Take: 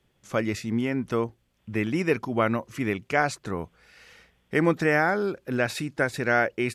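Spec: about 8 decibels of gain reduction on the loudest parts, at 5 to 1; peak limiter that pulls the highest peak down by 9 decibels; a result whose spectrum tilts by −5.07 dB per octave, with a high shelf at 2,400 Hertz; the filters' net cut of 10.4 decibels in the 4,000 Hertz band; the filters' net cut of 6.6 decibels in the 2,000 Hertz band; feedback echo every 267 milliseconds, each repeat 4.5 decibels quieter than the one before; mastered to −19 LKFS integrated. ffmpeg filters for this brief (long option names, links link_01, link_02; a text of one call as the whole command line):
ffmpeg -i in.wav -af "equalizer=frequency=2000:width_type=o:gain=-5.5,highshelf=frequency=2400:gain=-4.5,equalizer=frequency=4000:width_type=o:gain=-8,acompressor=threshold=-27dB:ratio=5,alimiter=level_in=2.5dB:limit=-24dB:level=0:latency=1,volume=-2.5dB,aecho=1:1:267|534|801|1068|1335|1602|1869|2136|2403:0.596|0.357|0.214|0.129|0.0772|0.0463|0.0278|0.0167|0.01,volume=16.5dB" out.wav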